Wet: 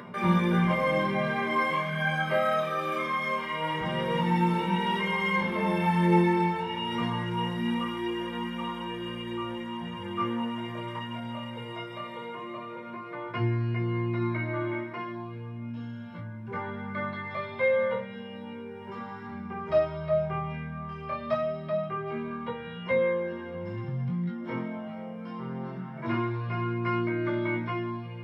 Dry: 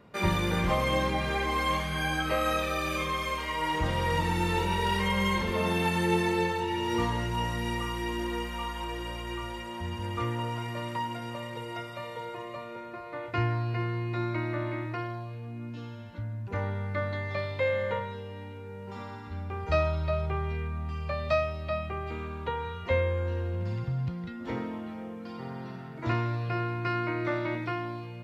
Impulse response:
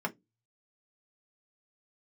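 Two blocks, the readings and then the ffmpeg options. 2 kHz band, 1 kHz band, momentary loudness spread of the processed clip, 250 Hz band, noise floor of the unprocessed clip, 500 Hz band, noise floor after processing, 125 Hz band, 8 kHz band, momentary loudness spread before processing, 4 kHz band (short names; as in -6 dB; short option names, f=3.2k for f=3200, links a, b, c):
+1.0 dB, +1.0 dB, 13 LU, +4.0 dB, -42 dBFS, +2.0 dB, -40 dBFS, -0.5 dB, under -10 dB, 13 LU, -2.0 dB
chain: -filter_complex "[0:a]flanger=delay=16.5:depth=7.8:speed=0.22,equalizer=f=2.9k:w=0.92:g=4.5,bandreject=f=2.6k:w=8.7[a];[1:a]atrim=start_sample=2205[b];[a][b]afir=irnorm=-1:irlink=0,acompressor=mode=upward:threshold=-30dB:ratio=2.5,volume=-3.5dB"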